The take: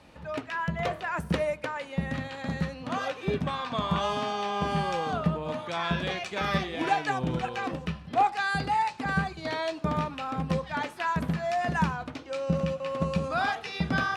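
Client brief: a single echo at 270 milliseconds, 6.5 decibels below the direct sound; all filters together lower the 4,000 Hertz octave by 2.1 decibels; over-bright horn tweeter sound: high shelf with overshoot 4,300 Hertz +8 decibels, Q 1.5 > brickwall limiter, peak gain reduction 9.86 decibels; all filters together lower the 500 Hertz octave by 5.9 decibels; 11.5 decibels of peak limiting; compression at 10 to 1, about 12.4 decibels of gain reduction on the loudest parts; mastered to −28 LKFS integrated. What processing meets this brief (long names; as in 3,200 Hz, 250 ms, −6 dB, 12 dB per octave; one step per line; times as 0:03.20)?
parametric band 500 Hz −7.5 dB
parametric band 4,000 Hz −4 dB
downward compressor 10 to 1, threshold −35 dBFS
brickwall limiter −33.5 dBFS
high shelf with overshoot 4,300 Hz +8 dB, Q 1.5
single-tap delay 270 ms −6.5 dB
level +17.5 dB
brickwall limiter −19.5 dBFS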